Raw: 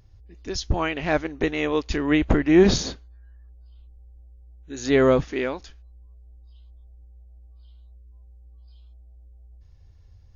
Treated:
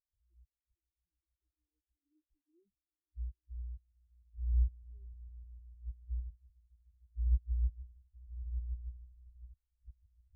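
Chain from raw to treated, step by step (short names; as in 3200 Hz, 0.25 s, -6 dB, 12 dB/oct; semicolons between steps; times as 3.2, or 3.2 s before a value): hard clip -18 dBFS, distortion -8 dB; AGC gain up to 10 dB; band shelf 890 Hz -13.5 dB; flipped gate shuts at -33 dBFS, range -35 dB; on a send: swelling echo 0.152 s, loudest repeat 5, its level -9.5 dB; on the sum: spectral expander 4:1; gain +8 dB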